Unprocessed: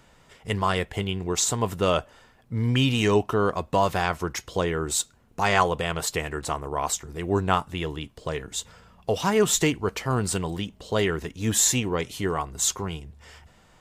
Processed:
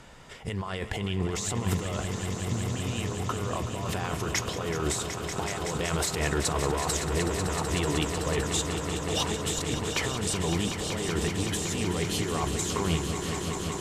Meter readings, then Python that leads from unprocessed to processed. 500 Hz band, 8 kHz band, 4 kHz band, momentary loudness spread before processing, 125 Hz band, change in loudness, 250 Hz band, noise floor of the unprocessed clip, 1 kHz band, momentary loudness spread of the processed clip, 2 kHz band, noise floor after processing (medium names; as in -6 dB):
-5.0 dB, -4.5 dB, -1.5 dB, 12 LU, -1.0 dB, -4.0 dB, -2.5 dB, -58 dBFS, -6.5 dB, 5 LU, -3.5 dB, -35 dBFS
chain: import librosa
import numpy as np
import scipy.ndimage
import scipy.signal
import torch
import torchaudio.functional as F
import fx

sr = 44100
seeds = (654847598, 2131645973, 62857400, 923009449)

y = scipy.signal.sosfilt(scipy.signal.butter(2, 12000.0, 'lowpass', fs=sr, output='sos'), x)
y = fx.over_compress(y, sr, threshold_db=-32.0, ratio=-1.0)
y = fx.echo_swell(y, sr, ms=188, loudest=5, wet_db=-10.0)